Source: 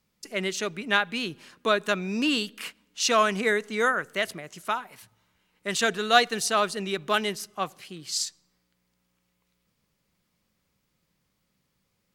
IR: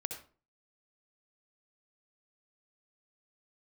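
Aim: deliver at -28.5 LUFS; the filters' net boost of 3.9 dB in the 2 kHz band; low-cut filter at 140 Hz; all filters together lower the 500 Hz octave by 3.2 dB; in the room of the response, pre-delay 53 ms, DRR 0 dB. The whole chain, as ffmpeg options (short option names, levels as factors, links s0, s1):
-filter_complex "[0:a]highpass=140,equalizer=f=500:t=o:g=-4.5,equalizer=f=2000:t=o:g=5.5,asplit=2[s0][s1];[1:a]atrim=start_sample=2205,adelay=53[s2];[s1][s2]afir=irnorm=-1:irlink=0,volume=1[s3];[s0][s3]amix=inputs=2:normalize=0,volume=0.473"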